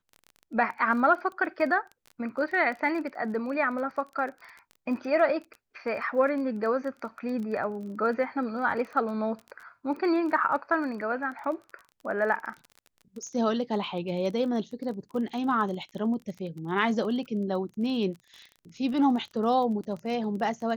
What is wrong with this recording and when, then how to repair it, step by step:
surface crackle 23 per second −36 dBFS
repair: click removal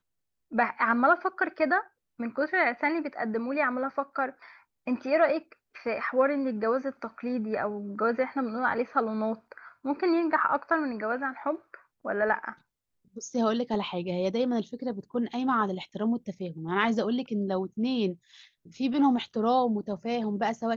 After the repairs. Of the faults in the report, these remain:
none of them is left

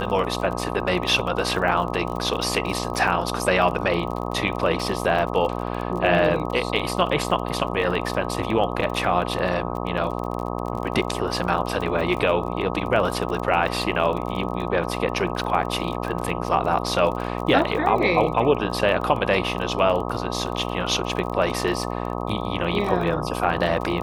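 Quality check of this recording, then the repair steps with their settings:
mains buzz 60 Hz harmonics 21 −28 dBFS
surface crackle 31 per second −29 dBFS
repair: click removal
hum removal 60 Hz, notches 21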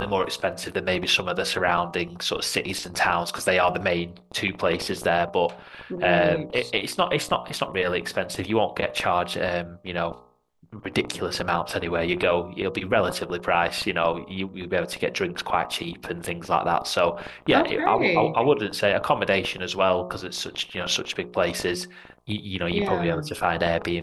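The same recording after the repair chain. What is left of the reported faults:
none of them is left

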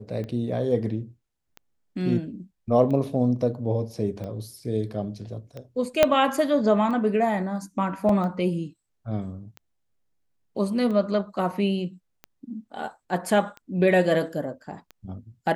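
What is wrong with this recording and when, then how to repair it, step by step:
scratch tick 45 rpm −24 dBFS
0:06.03: click −3 dBFS
0:08.09: drop-out 3.1 ms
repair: click removal
repair the gap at 0:08.09, 3.1 ms

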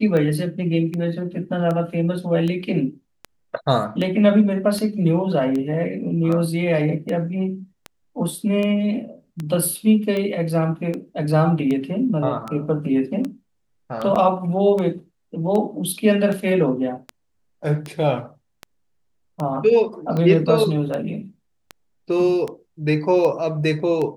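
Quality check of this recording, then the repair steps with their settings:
scratch tick 78 rpm −15 dBFS
0:14.15–0:14.16: drop-out 6.5 ms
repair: click removal
repair the gap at 0:14.15, 6.5 ms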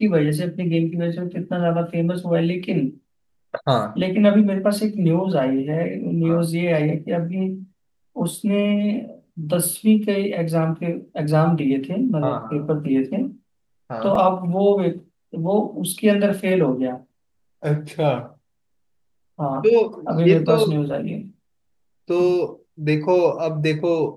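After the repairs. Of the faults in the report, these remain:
none of them is left

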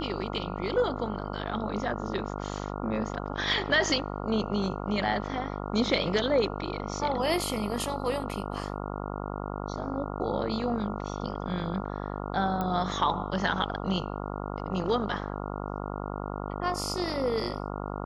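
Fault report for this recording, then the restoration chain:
mains buzz 50 Hz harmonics 28 −35 dBFS
0:12.61: click −18 dBFS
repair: click removal
hum removal 50 Hz, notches 28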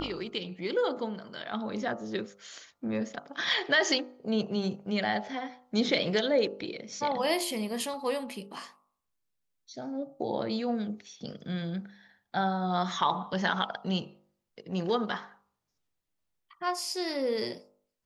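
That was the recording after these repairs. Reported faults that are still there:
none of them is left

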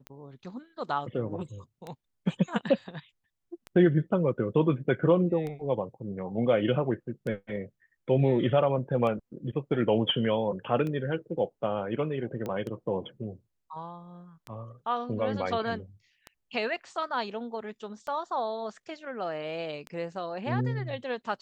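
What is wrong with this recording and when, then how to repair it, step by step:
scratch tick 33 1/3 rpm −24 dBFS
0:12.46: click −22 dBFS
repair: click removal

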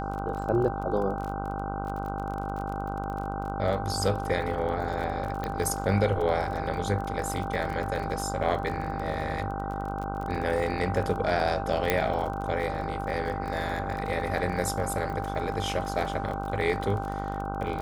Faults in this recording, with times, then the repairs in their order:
mains buzz 50 Hz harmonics 31 −34 dBFS
surface crackle 32 per second −33 dBFS
whistle 790 Hz −34 dBFS
0:05.44: click −18 dBFS
0:11.90: click −8 dBFS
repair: click removal
notch filter 790 Hz, Q 30
hum removal 50 Hz, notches 31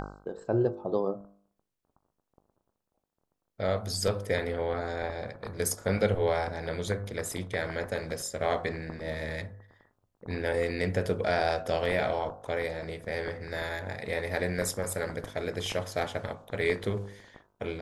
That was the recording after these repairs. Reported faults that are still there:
none of them is left

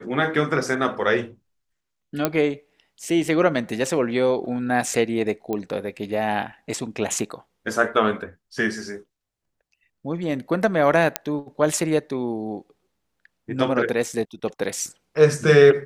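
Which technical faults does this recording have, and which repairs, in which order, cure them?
0:02.25: click −5 dBFS
0:05.53: click −15 dBFS
0:11.16: click −2 dBFS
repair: click removal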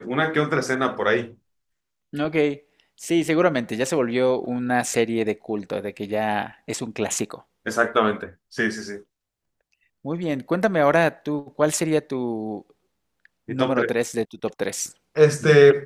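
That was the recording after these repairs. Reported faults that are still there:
none of them is left

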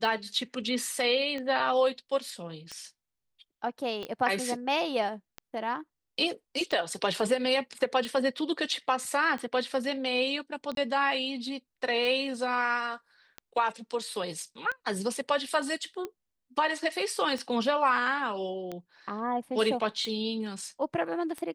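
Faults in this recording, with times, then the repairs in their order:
scratch tick 45 rpm
0:04.03: click −25 dBFS
0:10.75–0:10.77: drop-out 22 ms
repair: click removal
repair the gap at 0:10.75, 22 ms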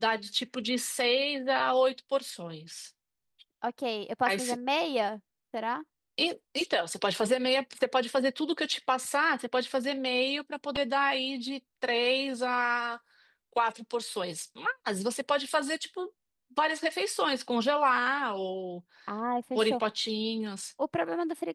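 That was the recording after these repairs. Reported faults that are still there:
0:04.03: click

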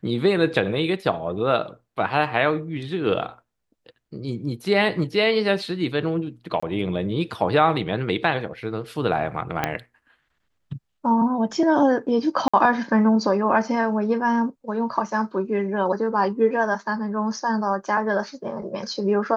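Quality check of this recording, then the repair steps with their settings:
0:06.60–0:06.62: drop-out 25 ms
0:09.64: click −7 dBFS
0:12.48–0:12.54: drop-out 55 ms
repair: click removal
repair the gap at 0:06.60, 25 ms
repair the gap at 0:12.48, 55 ms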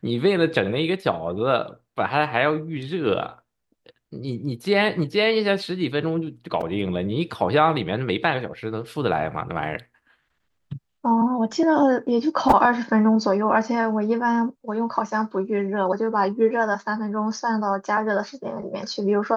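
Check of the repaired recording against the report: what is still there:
0:09.64: click

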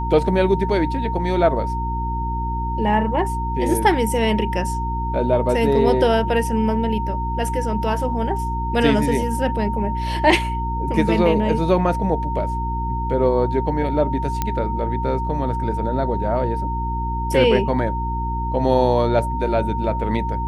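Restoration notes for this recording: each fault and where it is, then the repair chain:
mains hum 60 Hz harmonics 6 −25 dBFS
whistle 920 Hz −25 dBFS
0:14.42: click −7 dBFS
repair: click removal
notch filter 920 Hz, Q 30
hum removal 60 Hz, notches 6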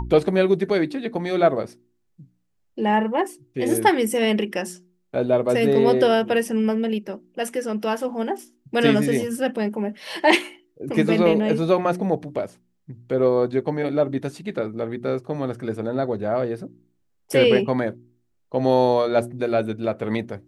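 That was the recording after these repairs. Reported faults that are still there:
none of them is left

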